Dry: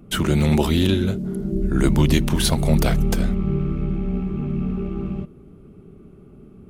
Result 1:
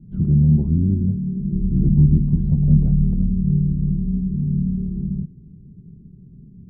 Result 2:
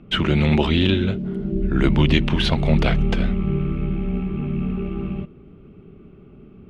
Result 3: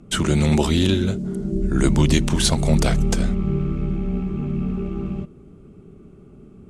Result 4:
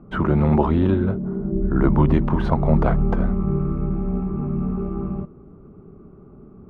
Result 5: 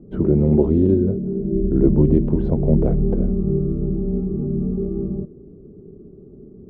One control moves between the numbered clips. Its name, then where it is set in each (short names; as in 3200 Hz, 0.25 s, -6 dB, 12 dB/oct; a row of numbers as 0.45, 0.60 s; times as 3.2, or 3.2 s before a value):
synth low-pass, frequency: 160, 2900, 7800, 1100, 430 Hz